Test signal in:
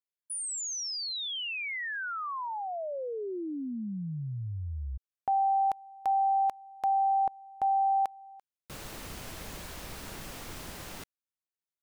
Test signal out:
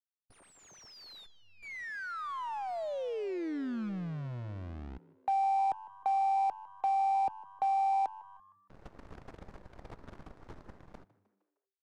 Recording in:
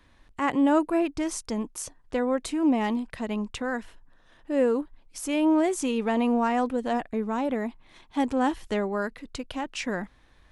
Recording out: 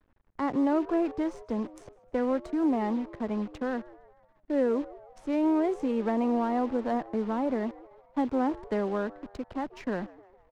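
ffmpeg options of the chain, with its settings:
-filter_complex "[0:a]equalizer=f=2900:w=1.5:g=-9.5,agate=range=0.447:threshold=0.00631:ratio=16:release=50:detection=peak,aresample=32000,aresample=44100,acrossover=split=160|360|850[s0][s1][s2][s3];[s0]acompressor=threshold=0.00562:ratio=6[s4];[s1]acompressor=threshold=0.0355:ratio=3[s5];[s2]acompressor=threshold=0.0282:ratio=2[s6];[s3]acompressor=threshold=0.0158:ratio=8[s7];[s4][s5][s6][s7]amix=inputs=4:normalize=0,acrusher=bits=8:dc=4:mix=0:aa=0.000001,asplit=5[s8][s9][s10][s11][s12];[s9]adelay=154,afreqshift=97,volume=0.112[s13];[s10]adelay=308,afreqshift=194,volume=0.0562[s14];[s11]adelay=462,afreqshift=291,volume=0.0282[s15];[s12]adelay=616,afreqshift=388,volume=0.014[s16];[s8][s13][s14][s15][s16]amix=inputs=5:normalize=0,adynamicsmooth=sensitivity=4:basefreq=1700"

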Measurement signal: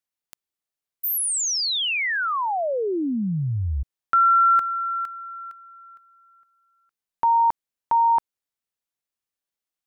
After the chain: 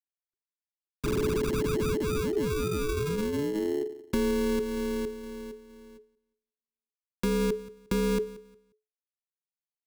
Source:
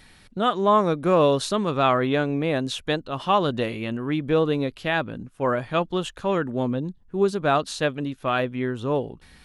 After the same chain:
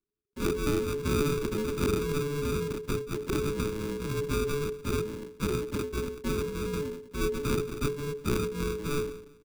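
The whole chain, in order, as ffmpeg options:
-filter_complex "[0:a]bandreject=f=60:t=h:w=6,bandreject=f=120:t=h:w=6,bandreject=f=180:t=h:w=6,bandreject=f=240:t=h:w=6,bandreject=f=300:t=h:w=6,bandreject=f=360:t=h:w=6,bandreject=f=420:t=h:w=6,afftdn=nr=13:nf=-36,agate=range=0.0631:threshold=0.00158:ratio=16:release=26:detection=rms,highshelf=f=2600:g=3,acompressor=threshold=0.0794:ratio=16:attack=78:release=183:knee=6:detection=rms,asplit=2[s0][s1];[s1]adelay=179,lowpass=f=1400:p=1,volume=0.133,asplit=2[s2][s3];[s3]adelay=179,lowpass=f=1400:p=1,volume=0.31,asplit=2[s4][s5];[s5]adelay=179,lowpass=f=1400:p=1,volume=0.31[s6];[s0][s2][s4][s6]amix=inputs=4:normalize=0,acrusher=samples=38:mix=1:aa=0.000001,aeval=exprs='max(val(0),0)':c=same,afreqshift=-430"

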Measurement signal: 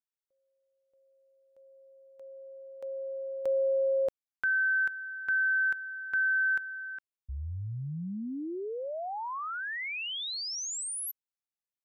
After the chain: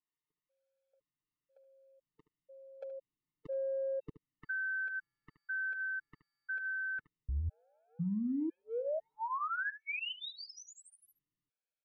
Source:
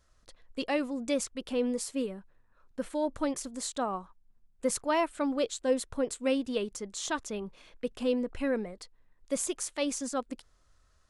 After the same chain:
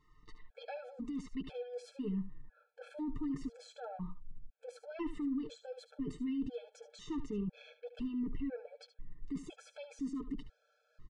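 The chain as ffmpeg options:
-filter_complex "[0:a]acontrast=80,lowshelf=f=100:g=-9,aecho=1:1:6.6:0.72,asubboost=boost=9.5:cutoff=240,areverse,acompressor=threshold=0.0447:ratio=5:attack=0.89:release=36:knee=6:detection=peak,areverse,alimiter=level_in=1.5:limit=0.0631:level=0:latency=1:release=89,volume=0.668,lowpass=2800,asplit=2[s0][s1];[s1]aecho=0:1:73:0.224[s2];[s0][s2]amix=inputs=2:normalize=0,afftfilt=real='re*gt(sin(2*PI*1*pts/sr)*(1-2*mod(floor(b*sr/1024/440),2)),0)':imag='im*gt(sin(2*PI*1*pts/sr)*(1-2*mod(floor(b*sr/1024/440),2)),0)':win_size=1024:overlap=0.75,volume=0.668"

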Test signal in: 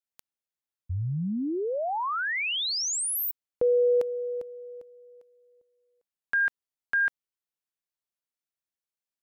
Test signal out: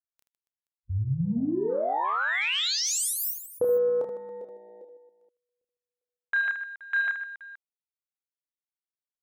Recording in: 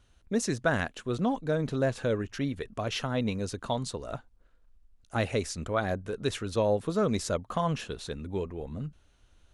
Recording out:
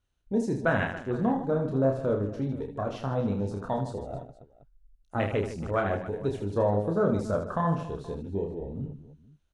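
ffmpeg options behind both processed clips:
-af "afwtdn=0.02,aecho=1:1:30|78|154.8|277.7|474.3:0.631|0.398|0.251|0.158|0.1"

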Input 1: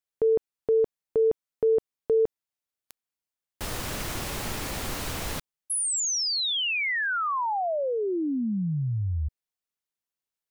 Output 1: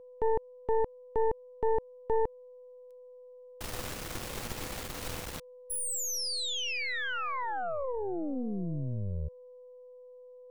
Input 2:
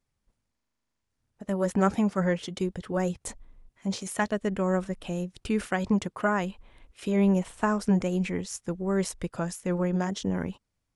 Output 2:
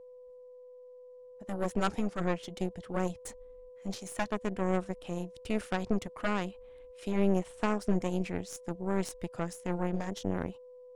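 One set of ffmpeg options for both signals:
-af "aeval=exprs='val(0)+0.00891*sin(2*PI*500*n/s)':c=same,aeval=exprs='0.376*(cos(1*acos(clip(val(0)/0.376,-1,1)))-cos(1*PI/2))+0.168*(cos(2*acos(clip(val(0)/0.376,-1,1)))-cos(2*PI/2))+0.15*(cos(4*acos(clip(val(0)/0.376,-1,1)))-cos(4*PI/2))+0.0211*(cos(8*acos(clip(val(0)/0.376,-1,1)))-cos(8*PI/2))':c=same,volume=0.422"

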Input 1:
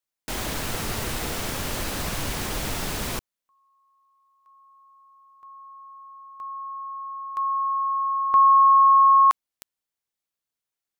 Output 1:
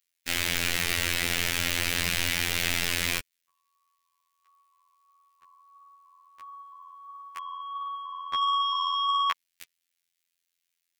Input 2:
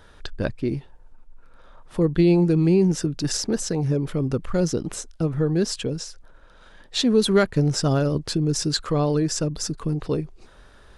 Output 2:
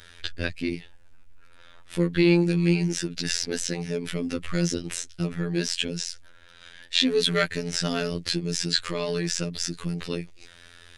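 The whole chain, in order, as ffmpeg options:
-filter_complex "[0:a]flanger=delay=0:depth=3.7:regen=-64:speed=1.5:shape=sinusoidal,acrossover=split=3400[s0][s1];[s1]acompressor=threshold=0.00891:ratio=4:attack=1:release=60[s2];[s0][s2]amix=inputs=2:normalize=0,asplit=2[s3][s4];[s4]asoftclip=type=tanh:threshold=0.0944,volume=0.531[s5];[s3][s5]amix=inputs=2:normalize=0,afftfilt=real='hypot(re,im)*cos(PI*b)':imag='0':win_size=2048:overlap=0.75,highshelf=f=1500:t=q:w=1.5:g=11"

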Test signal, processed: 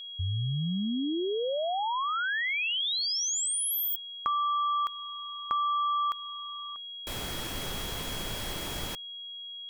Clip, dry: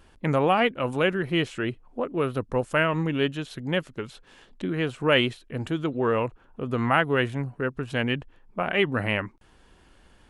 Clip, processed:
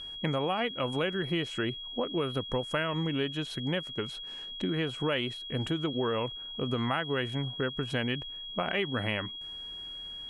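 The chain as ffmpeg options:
-af "acompressor=threshold=0.0447:ratio=6,aeval=exprs='val(0)+0.0112*sin(2*PI*3300*n/s)':c=same"

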